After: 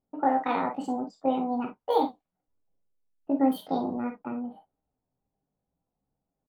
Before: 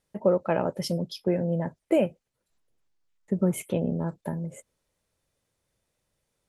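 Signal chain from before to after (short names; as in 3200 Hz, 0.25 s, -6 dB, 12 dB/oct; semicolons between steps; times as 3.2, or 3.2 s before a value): low-pass opened by the level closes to 470 Hz, open at -19 dBFS; pitch shift +6.5 st; non-linear reverb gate 80 ms flat, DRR 3 dB; gain -3.5 dB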